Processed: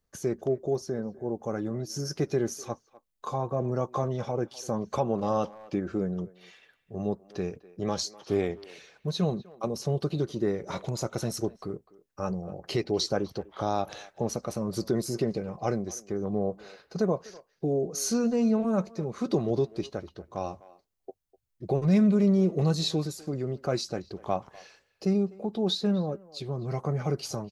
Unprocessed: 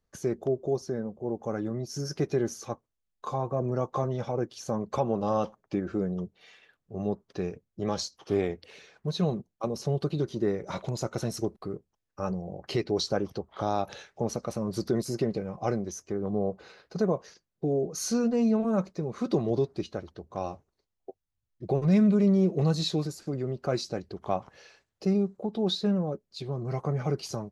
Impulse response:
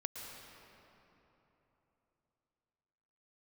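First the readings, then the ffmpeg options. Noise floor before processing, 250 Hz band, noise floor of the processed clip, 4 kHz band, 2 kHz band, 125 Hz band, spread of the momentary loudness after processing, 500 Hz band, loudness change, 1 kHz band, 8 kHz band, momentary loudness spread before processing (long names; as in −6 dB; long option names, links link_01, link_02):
−83 dBFS, 0.0 dB, −75 dBFS, +1.5 dB, +0.5 dB, 0.0 dB, 11 LU, 0.0 dB, 0.0 dB, 0.0 dB, +2.5 dB, 11 LU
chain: -filter_complex "[0:a]highshelf=frequency=7300:gain=6,asplit=2[link_01][link_02];[link_02]adelay=250,highpass=300,lowpass=3400,asoftclip=type=hard:threshold=-23dB,volume=-19dB[link_03];[link_01][link_03]amix=inputs=2:normalize=0"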